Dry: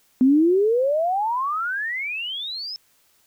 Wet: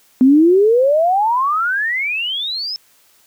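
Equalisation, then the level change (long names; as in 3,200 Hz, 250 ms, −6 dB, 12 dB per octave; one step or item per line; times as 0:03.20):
low-shelf EQ 190 Hz −6 dB
+8.0 dB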